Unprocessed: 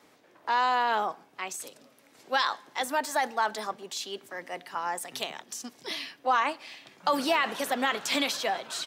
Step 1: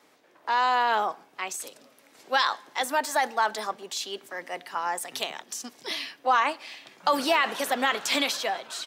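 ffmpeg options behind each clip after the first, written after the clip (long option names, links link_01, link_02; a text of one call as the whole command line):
ffmpeg -i in.wav -af "lowshelf=frequency=170:gain=-10,dynaudnorm=framelen=100:gausssize=11:maxgain=3dB" out.wav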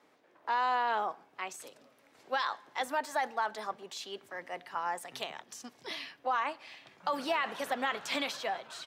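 ffmpeg -i in.wav -af "highshelf=frequency=3700:gain=-10,alimiter=limit=-16.5dB:level=0:latency=1:release=367,asubboost=boost=4:cutoff=120,volume=-4dB" out.wav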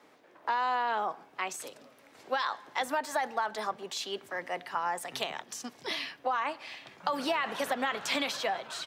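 ffmpeg -i in.wav -filter_complex "[0:a]acrossover=split=170[link_01][link_02];[link_02]acompressor=threshold=-34dB:ratio=3[link_03];[link_01][link_03]amix=inputs=2:normalize=0,volume=6dB" out.wav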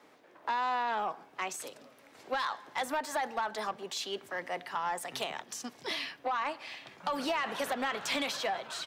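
ffmpeg -i in.wav -af "asoftclip=type=tanh:threshold=-24.5dB" out.wav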